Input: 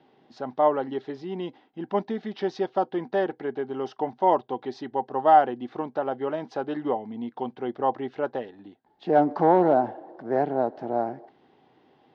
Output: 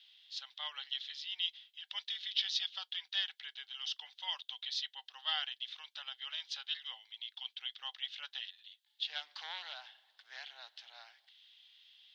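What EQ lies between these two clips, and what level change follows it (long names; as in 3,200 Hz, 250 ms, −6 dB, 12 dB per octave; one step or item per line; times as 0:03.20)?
four-pole ladder high-pass 3,000 Hz, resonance 60%
+16.5 dB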